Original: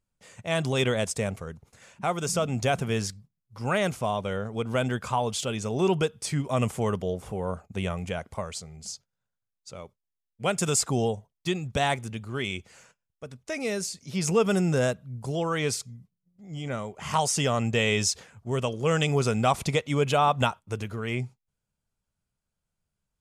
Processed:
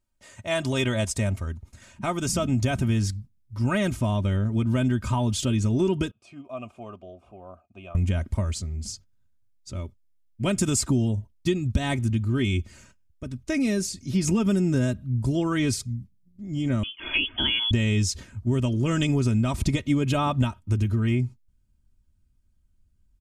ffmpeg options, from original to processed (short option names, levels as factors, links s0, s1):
-filter_complex "[0:a]asettb=1/sr,asplit=3[s0][s1][s2];[s0]atrim=end=6.114[s3];[s1]atrim=start=6.11:end=7.95,asetpts=PTS-STARTPTS,afade=t=in:d=0.004:c=qsin,afade=t=out:st=1.836:d=0.004:c=qsin,asplit=3[s4][s5][s6];[s4]bandpass=f=730:t=q:w=8,volume=1[s7];[s5]bandpass=f=1090:t=q:w=8,volume=0.501[s8];[s6]bandpass=f=2440:t=q:w=8,volume=0.355[s9];[s7][s8][s9]amix=inputs=3:normalize=0[s10];[s2]atrim=start=7.946[s11];[s3][s10]acrossfade=d=0.004:c1=hsin:c2=qsin[s12];[s12][s11]acrossfade=d=0.004:c1=qsin:c2=hsin,asettb=1/sr,asplit=3[s13][s14][s15];[s13]atrim=end=16.834[s16];[s14]atrim=start=16.83:end=17.71,asetpts=PTS-STARTPTS,afade=t=in:d=0.004:c=qsin,afade=t=out:st=0.876:d=0.004:c=qsin,lowpass=f=3000:t=q:w=0.5098,lowpass=f=3000:t=q:w=0.6013,lowpass=f=3000:t=q:w=0.9,lowpass=f=3000:t=q:w=2.563,afreqshift=-3500[s17];[s15]atrim=start=17.706[s18];[s16][s17]acrossfade=d=0.004:c1=hsin:c2=qsin[s19];[s19][s18]acrossfade=d=0.004:c1=qsin:c2=hsin,asubboost=boost=8.5:cutoff=220,aecho=1:1:3.2:0.72,acompressor=threshold=0.112:ratio=6"